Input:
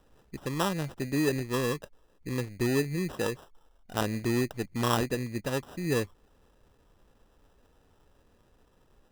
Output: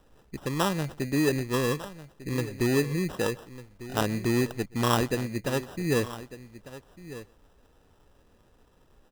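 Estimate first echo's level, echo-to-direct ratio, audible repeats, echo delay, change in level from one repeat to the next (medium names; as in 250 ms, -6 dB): -24.0 dB, -15.0 dB, 2, 126 ms, no regular repeats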